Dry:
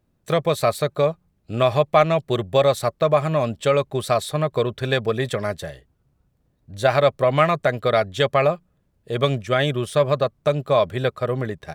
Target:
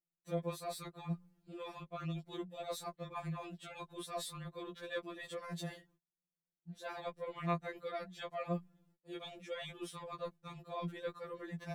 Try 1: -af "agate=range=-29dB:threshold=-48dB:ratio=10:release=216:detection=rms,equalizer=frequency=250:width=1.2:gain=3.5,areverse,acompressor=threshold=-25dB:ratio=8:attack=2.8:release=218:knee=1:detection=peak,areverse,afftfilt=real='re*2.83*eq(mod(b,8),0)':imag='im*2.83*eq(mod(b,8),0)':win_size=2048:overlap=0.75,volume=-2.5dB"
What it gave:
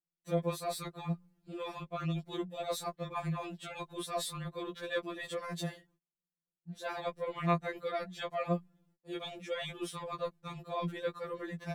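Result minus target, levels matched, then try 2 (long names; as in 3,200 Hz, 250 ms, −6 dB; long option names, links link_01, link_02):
downward compressor: peak gain reduction −5.5 dB
-af "agate=range=-29dB:threshold=-48dB:ratio=10:release=216:detection=rms,equalizer=frequency=250:width=1.2:gain=3.5,areverse,acompressor=threshold=-31.5dB:ratio=8:attack=2.8:release=218:knee=1:detection=peak,areverse,afftfilt=real='re*2.83*eq(mod(b,8),0)':imag='im*2.83*eq(mod(b,8),0)':win_size=2048:overlap=0.75,volume=-2.5dB"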